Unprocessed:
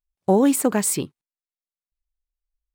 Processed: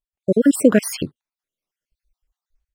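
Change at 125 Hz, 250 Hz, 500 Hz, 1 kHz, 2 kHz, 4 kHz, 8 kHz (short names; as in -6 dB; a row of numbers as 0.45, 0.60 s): +1.5, +3.5, +3.0, -10.5, +5.5, +2.0, -4.5 dB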